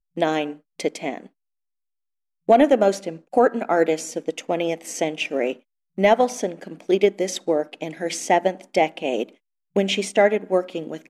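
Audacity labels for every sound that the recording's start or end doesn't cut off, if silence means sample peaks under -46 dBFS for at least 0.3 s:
2.480000	5.590000	sound
5.980000	9.350000	sound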